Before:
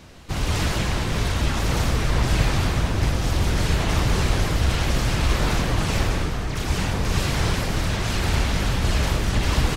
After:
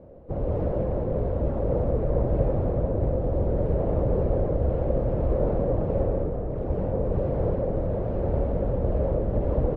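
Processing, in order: resonant low-pass 540 Hz, resonance Q 5.1; trim -4.5 dB

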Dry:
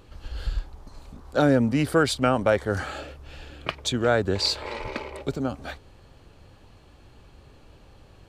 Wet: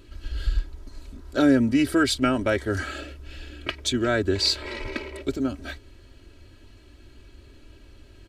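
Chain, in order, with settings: high-order bell 850 Hz -8.5 dB 1.2 oct; comb 3.1 ms, depth 75%

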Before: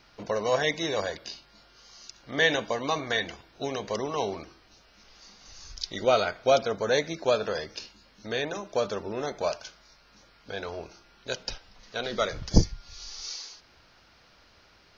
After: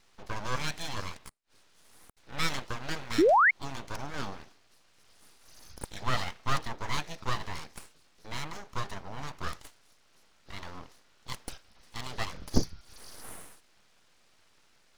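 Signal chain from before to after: 1.29–2.17 s: inverted gate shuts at -38 dBFS, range -34 dB; full-wave rectifier; 3.18–3.51 s: painted sound rise 280–2300 Hz -16 dBFS; trim -4.5 dB

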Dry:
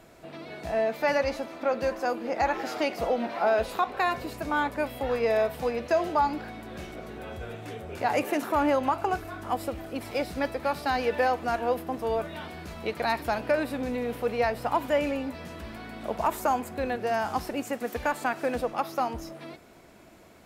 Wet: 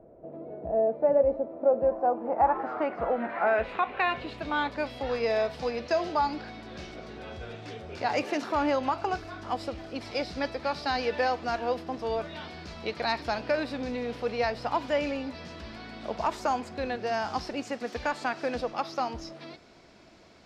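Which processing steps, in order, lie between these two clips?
low-pass sweep 550 Hz -> 5 kHz, 1.55–4.91 s; trim -2.5 dB

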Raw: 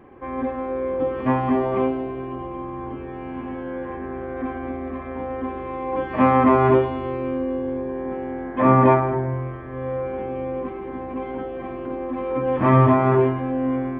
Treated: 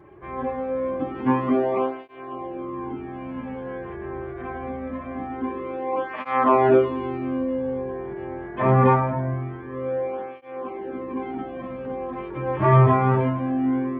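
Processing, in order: cancelling through-zero flanger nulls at 0.24 Hz, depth 4.2 ms; trim +1.5 dB

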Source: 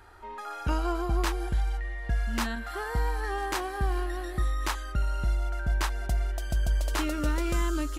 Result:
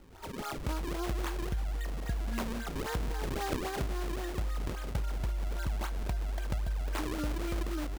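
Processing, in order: resampled via 11.025 kHz; compression, threshold -30 dBFS, peak gain reduction 8.5 dB; decimation with a swept rate 37×, swing 160% 3.7 Hz

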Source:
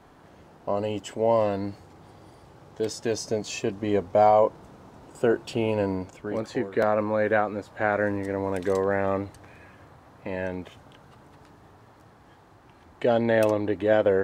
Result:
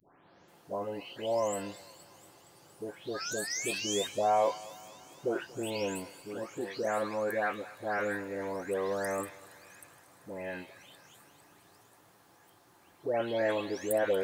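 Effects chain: delay that grows with frequency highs late, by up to 483 ms; bass shelf 420 Hz +6 dB; painted sound rise, 3.14–4.07 s, 1.2–3.8 kHz -37 dBFS; RIAA curve recording; thinning echo 234 ms, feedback 76%, high-pass 840 Hz, level -16.5 dB; trim -7 dB

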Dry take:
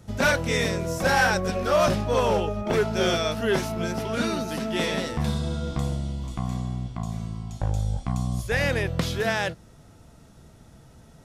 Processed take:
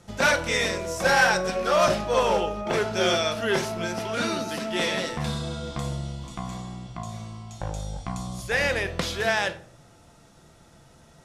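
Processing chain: low-pass 11 kHz 12 dB/octave; bass shelf 310 Hz -10 dB; simulated room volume 700 m³, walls furnished, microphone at 0.83 m; trim +2 dB

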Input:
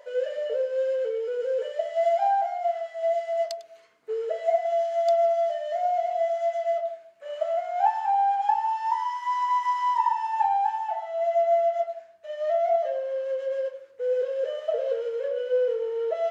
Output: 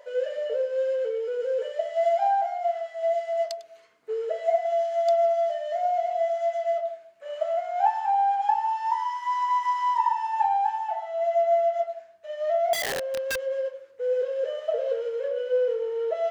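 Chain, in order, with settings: 12.73–13.42 s: integer overflow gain 24 dB

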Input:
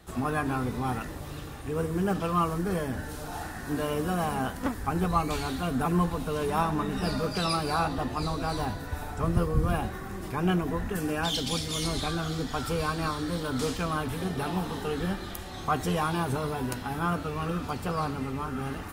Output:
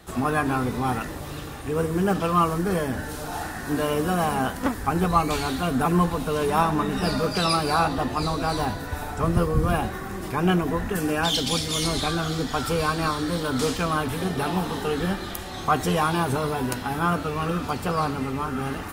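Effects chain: bass shelf 150 Hz -4.5 dB; trim +6 dB

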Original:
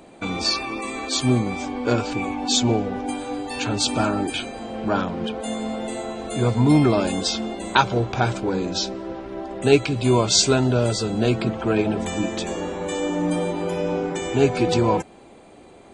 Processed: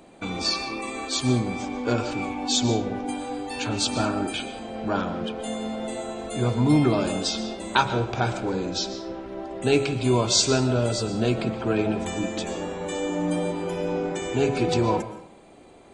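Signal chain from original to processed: de-hum 69.07 Hz, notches 38; on a send: reverberation RT60 0.55 s, pre-delay 85 ms, DRR 11.5 dB; on the sum: trim -3 dB

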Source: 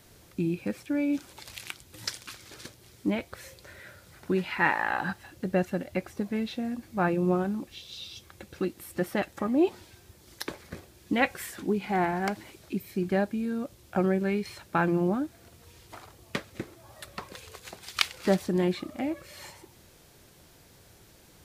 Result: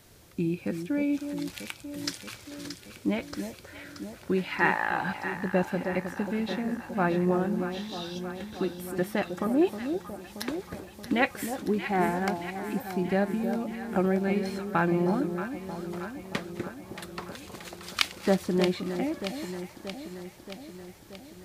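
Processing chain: echo whose repeats swap between lows and highs 314 ms, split 920 Hz, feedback 79%, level -7.5 dB

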